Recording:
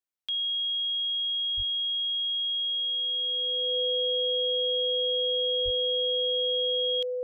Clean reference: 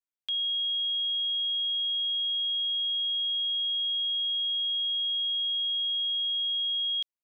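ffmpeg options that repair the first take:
-filter_complex "[0:a]bandreject=f=500:w=30,asplit=3[s0][s1][s2];[s0]afade=t=out:st=1.56:d=0.02[s3];[s1]highpass=f=140:w=0.5412,highpass=f=140:w=1.3066,afade=t=in:st=1.56:d=0.02,afade=t=out:st=1.68:d=0.02[s4];[s2]afade=t=in:st=1.68:d=0.02[s5];[s3][s4][s5]amix=inputs=3:normalize=0,asplit=3[s6][s7][s8];[s6]afade=t=out:st=5.64:d=0.02[s9];[s7]highpass=f=140:w=0.5412,highpass=f=140:w=1.3066,afade=t=in:st=5.64:d=0.02,afade=t=out:st=5.76:d=0.02[s10];[s8]afade=t=in:st=5.76:d=0.02[s11];[s9][s10][s11]amix=inputs=3:normalize=0"

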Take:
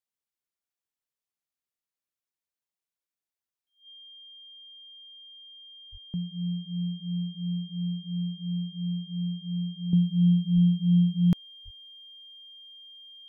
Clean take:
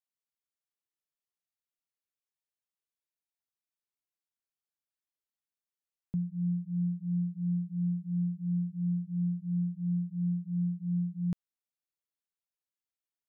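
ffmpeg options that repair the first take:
-filter_complex "[0:a]bandreject=f=3200:w=30,asplit=3[s0][s1][s2];[s0]afade=t=out:st=5.91:d=0.02[s3];[s1]highpass=f=140:w=0.5412,highpass=f=140:w=1.3066,afade=t=in:st=5.91:d=0.02,afade=t=out:st=6.03:d=0.02[s4];[s2]afade=t=in:st=6.03:d=0.02[s5];[s3][s4][s5]amix=inputs=3:normalize=0,asplit=3[s6][s7][s8];[s6]afade=t=out:st=10.54:d=0.02[s9];[s7]highpass=f=140:w=0.5412,highpass=f=140:w=1.3066,afade=t=in:st=10.54:d=0.02,afade=t=out:st=10.66:d=0.02[s10];[s8]afade=t=in:st=10.66:d=0.02[s11];[s9][s10][s11]amix=inputs=3:normalize=0,asplit=3[s12][s13][s14];[s12]afade=t=out:st=11.64:d=0.02[s15];[s13]highpass=f=140:w=0.5412,highpass=f=140:w=1.3066,afade=t=in:st=11.64:d=0.02,afade=t=out:st=11.76:d=0.02[s16];[s14]afade=t=in:st=11.76:d=0.02[s17];[s15][s16][s17]amix=inputs=3:normalize=0,asetnsamples=n=441:p=0,asendcmd='9.93 volume volume -10dB',volume=1"

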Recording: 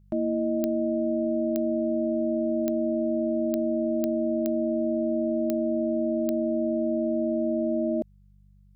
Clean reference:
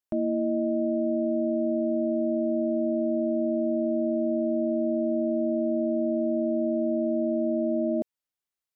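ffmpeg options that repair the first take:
-af "adeclick=t=4,bandreject=f=48.9:t=h:w=4,bandreject=f=97.8:t=h:w=4,bandreject=f=146.7:t=h:w=4,bandreject=f=195.6:t=h:w=4"

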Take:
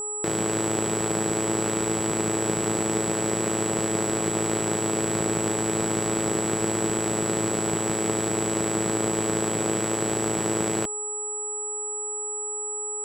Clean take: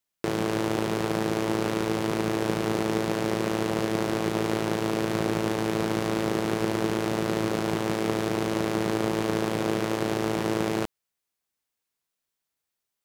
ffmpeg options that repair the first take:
-af "bandreject=f=418.8:t=h:w=4,bandreject=f=837.6:t=h:w=4,bandreject=f=1256.4:t=h:w=4,bandreject=f=7800:w=30"

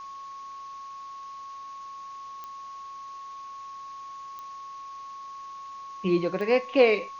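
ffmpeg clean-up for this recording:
-af "adeclick=t=4,bandreject=f=1100:w=30,afwtdn=0.0022"

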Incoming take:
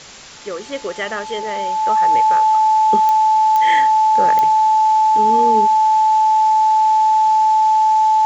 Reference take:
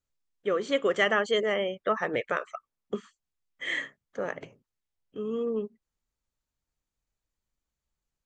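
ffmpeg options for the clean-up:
-af "adeclick=t=4,bandreject=f=870:w=30,afwtdn=0.018,asetnsamples=n=441:p=0,asendcmd='2.73 volume volume -9dB',volume=1"

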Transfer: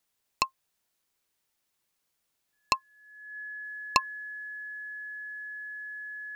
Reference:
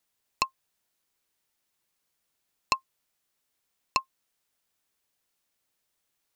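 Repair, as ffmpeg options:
-af "bandreject=f=1700:w=30,asetnsamples=n=441:p=0,asendcmd='3.64 volume volume -3dB',volume=1"

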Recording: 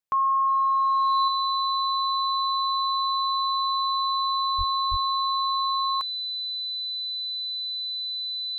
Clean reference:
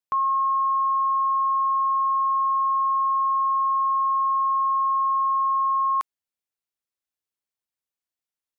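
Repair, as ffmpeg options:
-filter_complex "[0:a]bandreject=f=4000:w=30,asplit=3[s0][s1][s2];[s0]afade=t=out:st=4.57:d=0.02[s3];[s1]highpass=f=140:w=0.5412,highpass=f=140:w=1.3066,afade=t=in:st=4.57:d=0.02,afade=t=out:st=4.69:d=0.02[s4];[s2]afade=t=in:st=4.69:d=0.02[s5];[s3][s4][s5]amix=inputs=3:normalize=0,asplit=3[s6][s7][s8];[s6]afade=t=out:st=4.9:d=0.02[s9];[s7]highpass=f=140:w=0.5412,highpass=f=140:w=1.3066,afade=t=in:st=4.9:d=0.02,afade=t=out:st=5.02:d=0.02[s10];[s8]afade=t=in:st=5.02:d=0.02[s11];[s9][s10][s11]amix=inputs=3:normalize=0,asetnsamples=n=441:p=0,asendcmd='1.28 volume volume 4.5dB',volume=1"

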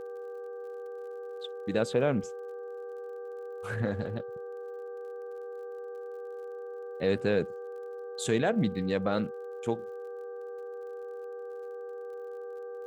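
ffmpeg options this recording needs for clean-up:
-af "adeclick=t=4,bandreject=f=392.3:t=h:w=4,bandreject=f=784.6:t=h:w=4,bandreject=f=1176.9:t=h:w=4,bandreject=f=1569.2:t=h:w=4,bandreject=f=480:w=30"

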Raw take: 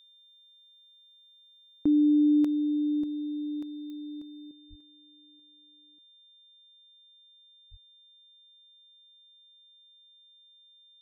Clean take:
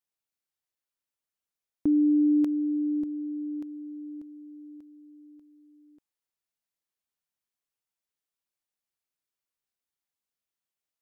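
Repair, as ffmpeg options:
-filter_complex "[0:a]adeclick=t=4,bandreject=f=3600:w=30,asplit=3[s0][s1][s2];[s0]afade=t=out:st=4.69:d=0.02[s3];[s1]highpass=f=140:w=0.5412,highpass=f=140:w=1.3066,afade=t=in:st=4.69:d=0.02,afade=t=out:st=4.81:d=0.02[s4];[s2]afade=t=in:st=4.81:d=0.02[s5];[s3][s4][s5]amix=inputs=3:normalize=0,asplit=3[s6][s7][s8];[s6]afade=t=out:st=7.7:d=0.02[s9];[s7]highpass=f=140:w=0.5412,highpass=f=140:w=1.3066,afade=t=in:st=7.7:d=0.02,afade=t=out:st=7.82:d=0.02[s10];[s8]afade=t=in:st=7.82:d=0.02[s11];[s9][s10][s11]amix=inputs=3:normalize=0,asetnsamples=n=441:p=0,asendcmd='4.51 volume volume 10.5dB',volume=1"

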